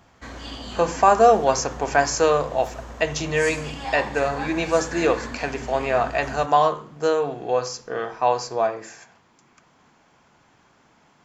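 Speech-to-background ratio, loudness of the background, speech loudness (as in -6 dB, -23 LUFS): 13.5 dB, -35.5 LUFS, -22.0 LUFS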